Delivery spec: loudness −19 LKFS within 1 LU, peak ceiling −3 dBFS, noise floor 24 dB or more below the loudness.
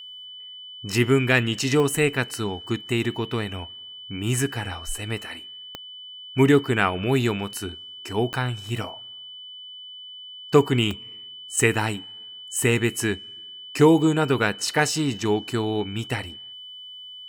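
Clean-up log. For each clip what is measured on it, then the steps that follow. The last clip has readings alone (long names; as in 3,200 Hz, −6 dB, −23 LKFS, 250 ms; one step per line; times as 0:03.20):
number of clicks 4; interfering tone 3,000 Hz; level of the tone −38 dBFS; integrated loudness −23.5 LKFS; sample peak −2.5 dBFS; target loudness −19.0 LKFS
→ click removal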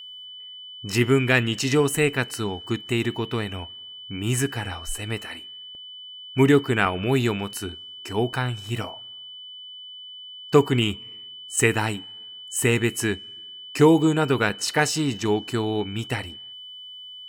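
number of clicks 1; interfering tone 3,000 Hz; level of the tone −38 dBFS
→ notch filter 3,000 Hz, Q 30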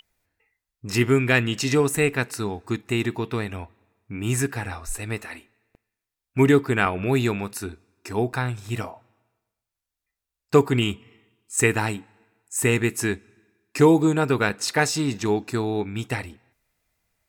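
interfering tone none found; integrated loudness −23.5 LKFS; sample peak −3.0 dBFS; target loudness −19.0 LKFS
→ level +4.5 dB
brickwall limiter −3 dBFS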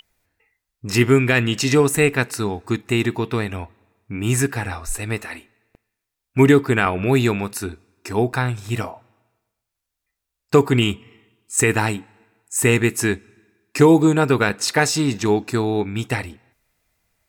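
integrated loudness −19.5 LKFS; sample peak −3.0 dBFS; background noise floor −82 dBFS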